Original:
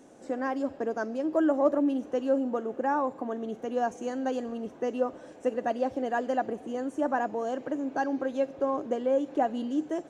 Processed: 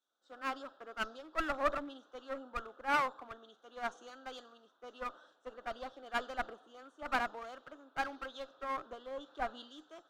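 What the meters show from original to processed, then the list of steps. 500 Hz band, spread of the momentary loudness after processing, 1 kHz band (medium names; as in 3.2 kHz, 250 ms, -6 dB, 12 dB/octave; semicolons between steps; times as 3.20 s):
-15.5 dB, 18 LU, -6.5 dB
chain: two resonant band-passes 2.2 kHz, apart 1.4 oct; one-sided clip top -51 dBFS; three bands expanded up and down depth 100%; trim +9 dB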